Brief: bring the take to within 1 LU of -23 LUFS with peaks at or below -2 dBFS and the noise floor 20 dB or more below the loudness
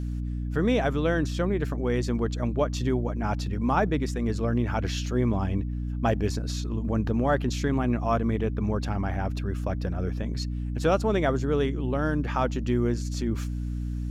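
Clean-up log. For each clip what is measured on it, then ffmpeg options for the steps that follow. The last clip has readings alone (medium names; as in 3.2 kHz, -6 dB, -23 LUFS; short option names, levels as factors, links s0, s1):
hum 60 Hz; highest harmonic 300 Hz; hum level -28 dBFS; loudness -27.5 LUFS; peak level -11.0 dBFS; loudness target -23.0 LUFS
-> -af "bandreject=f=60:t=h:w=6,bandreject=f=120:t=h:w=6,bandreject=f=180:t=h:w=6,bandreject=f=240:t=h:w=6,bandreject=f=300:t=h:w=6"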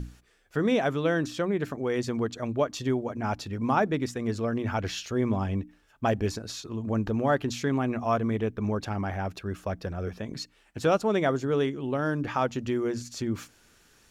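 hum not found; loudness -29.0 LUFS; peak level -10.5 dBFS; loudness target -23.0 LUFS
-> -af "volume=2"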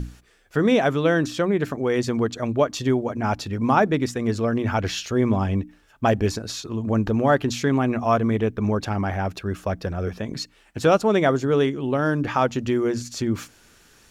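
loudness -23.0 LUFS; peak level -4.5 dBFS; noise floor -56 dBFS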